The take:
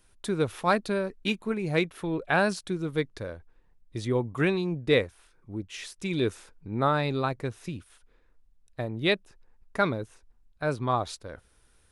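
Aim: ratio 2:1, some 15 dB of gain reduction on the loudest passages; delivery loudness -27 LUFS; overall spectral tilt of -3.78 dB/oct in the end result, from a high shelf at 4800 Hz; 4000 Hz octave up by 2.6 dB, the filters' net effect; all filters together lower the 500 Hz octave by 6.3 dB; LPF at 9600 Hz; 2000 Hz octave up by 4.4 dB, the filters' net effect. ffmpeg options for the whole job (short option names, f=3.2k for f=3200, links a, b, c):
-af "lowpass=9.6k,equalizer=f=500:t=o:g=-8.5,equalizer=f=2k:t=o:g=6.5,equalizer=f=4k:t=o:g=4.5,highshelf=f=4.8k:g=-8,acompressor=threshold=-47dB:ratio=2,volume=15dB"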